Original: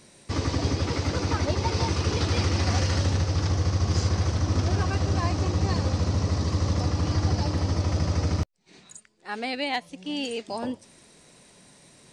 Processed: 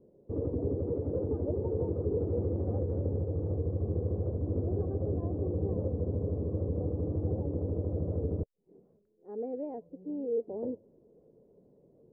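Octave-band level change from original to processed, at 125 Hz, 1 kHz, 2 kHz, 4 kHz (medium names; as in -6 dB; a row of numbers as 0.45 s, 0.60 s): -8.5 dB, -19.5 dB, under -40 dB, under -40 dB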